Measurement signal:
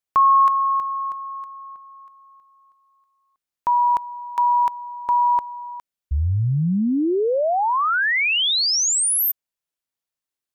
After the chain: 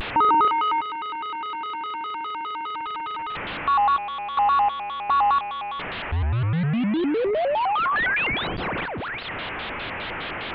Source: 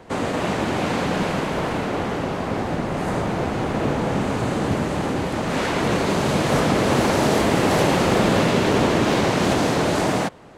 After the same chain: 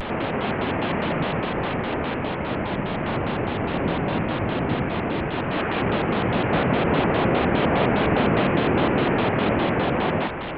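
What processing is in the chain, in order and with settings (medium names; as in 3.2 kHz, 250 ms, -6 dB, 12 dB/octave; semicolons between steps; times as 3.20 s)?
one-bit delta coder 16 kbps, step -22 dBFS; vibrato with a chosen wave square 4.9 Hz, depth 250 cents; trim -2 dB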